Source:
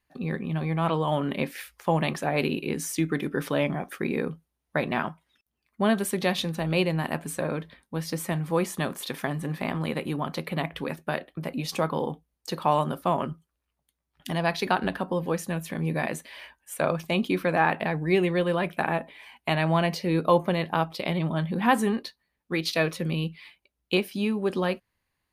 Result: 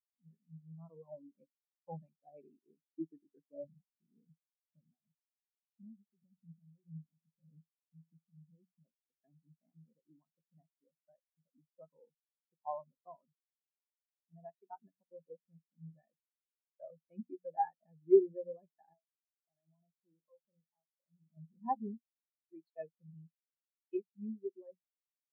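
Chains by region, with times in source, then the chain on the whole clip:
3.64–8.85 s: RIAA curve playback + compression 8:1, threshold -27 dBFS + phaser 1.8 Hz, delay 2 ms, feedback 25%
18.93–21.37 s: doubling 29 ms -11 dB + compression 5:1, threshold -28 dBFS
whole clip: bass shelf 110 Hz -5 dB; hum notches 60/120/180/240 Hz; spectral contrast expander 4:1; trim -7 dB

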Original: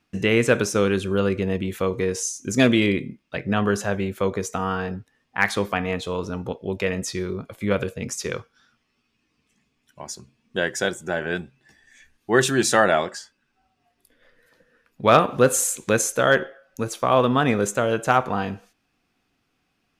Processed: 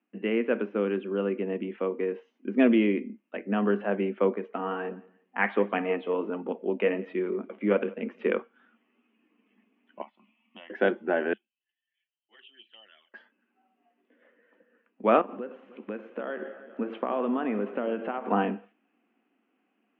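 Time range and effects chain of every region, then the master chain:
4.33–8.22 s: flange 1.4 Hz, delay 0.3 ms, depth 4.3 ms, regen +65% + feedback delay 172 ms, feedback 20%, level -23 dB
10.02–10.70 s: tilt shelf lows -9 dB, about 820 Hz + compression 2.5:1, threshold -44 dBFS + static phaser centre 1.6 kHz, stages 6
11.33–13.14 s: de-esser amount 30% + band-pass filter 3.1 kHz, Q 19 + touch-sensitive flanger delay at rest 6.6 ms, full sweep at -39.5 dBFS
15.21–18.31 s: compression 8:1, threshold -29 dBFS + echo whose repeats swap between lows and highs 101 ms, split 2.3 kHz, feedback 80%, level -14 dB
whole clip: Chebyshev band-pass 210–3000 Hz, order 5; tilt shelf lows +4.5 dB, about 740 Hz; gain riding 2 s; trim -4.5 dB

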